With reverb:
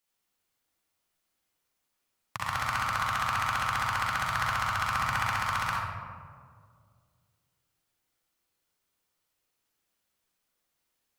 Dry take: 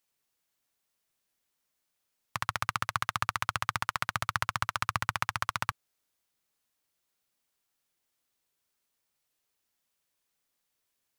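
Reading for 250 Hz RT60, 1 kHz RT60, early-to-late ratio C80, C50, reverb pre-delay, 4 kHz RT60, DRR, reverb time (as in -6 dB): 2.4 s, 1.8 s, 0.5 dB, -3.0 dB, 39 ms, 0.85 s, -5.0 dB, 2.1 s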